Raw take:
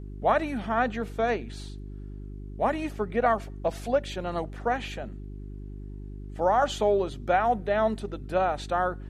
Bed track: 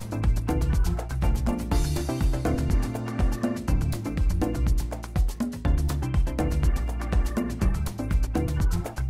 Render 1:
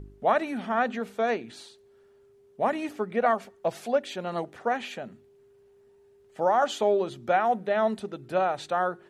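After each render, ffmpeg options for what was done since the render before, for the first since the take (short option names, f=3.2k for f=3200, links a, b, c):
-af "bandreject=f=50:t=h:w=4,bandreject=f=100:t=h:w=4,bandreject=f=150:t=h:w=4,bandreject=f=200:t=h:w=4,bandreject=f=250:t=h:w=4,bandreject=f=300:t=h:w=4,bandreject=f=350:t=h:w=4"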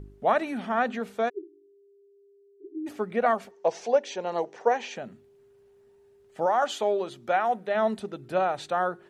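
-filter_complex "[0:a]asplit=3[a][b][c];[a]afade=t=out:st=1.28:d=0.02[d];[b]asuperpass=centerf=350:order=20:qfactor=3.1,afade=t=in:st=1.28:d=0.02,afade=t=out:st=2.86:d=0.02[e];[c]afade=t=in:st=2.86:d=0.02[f];[d][e][f]amix=inputs=3:normalize=0,asettb=1/sr,asplit=3[g][h][i];[g]atrim=end=3.514[j];[h]atrim=start=3.51:end=4.96,asetpts=PTS-STARTPTS,afade=t=in:d=0.004:c=qsin,afade=t=out:st=1.446:d=0.004:c=qsin,highpass=250,equalizer=f=270:t=q:w=4:g=-4,equalizer=f=460:t=q:w=4:g=8,equalizer=f=910:t=q:w=4:g=7,equalizer=f=1.3k:t=q:w=4:g=-6,equalizer=f=3.6k:t=q:w=4:g=-3,equalizer=f=5.9k:t=q:w=4:g=9,lowpass=f=7k:w=0.5412,lowpass=f=7k:w=1.3066[k];[i]atrim=start=4.956[l];[j][k]acrossfade=d=0.004:c1=hsin:c2=qsin[m];[m][l]acrossfade=d=0.004:c1=qsin:c2=hsin,asettb=1/sr,asplit=3[n][o][p];[n]atrim=end=6.464[q];[o]atrim=start=6.46:end=7.75,asetpts=PTS-STARTPTS,afade=t=in:d=0.004:c=qsin,afade=t=out:st=1.286:d=0.004:c=qsin,lowshelf=f=290:g=-8.5[r];[p]atrim=start=7.746[s];[q][r]acrossfade=d=0.004:c1=hsin:c2=qsin[t];[t][s]acrossfade=d=0.004:c1=qsin:c2=hsin"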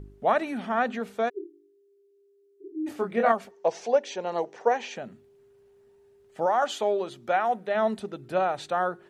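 -filter_complex "[0:a]asettb=1/sr,asplit=3[a][b][c];[a]atrim=end=1.334[d];[b]atrim=start=1.33:end=3.32,asetpts=PTS-STARTPTS,afade=t=in:d=0.004:c=qsin,afade=t=out:st=1.986:d=0.004:c=qsin,asplit=2[e][f];[f]adelay=26,volume=-3.5dB[g];[e][g]amix=inputs=2:normalize=0,atrim=end_sample=87759[h];[c]atrim=start=3.316[i];[d][h]acrossfade=d=0.004:c1=hsin:c2=qsin[j];[j][i]acrossfade=d=0.004:c1=qsin:c2=hsin"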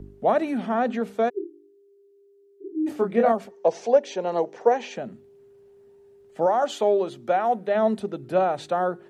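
-filter_complex "[0:a]acrossover=split=110|720|3700[a][b][c][d];[b]acontrast=56[e];[c]alimiter=limit=-24dB:level=0:latency=1:release=116[f];[a][e][f][d]amix=inputs=4:normalize=0"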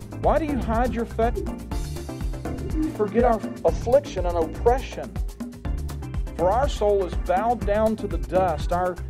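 -filter_complex "[1:a]volume=-5dB[a];[0:a][a]amix=inputs=2:normalize=0"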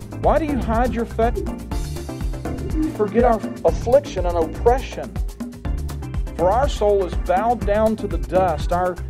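-af "volume=3.5dB"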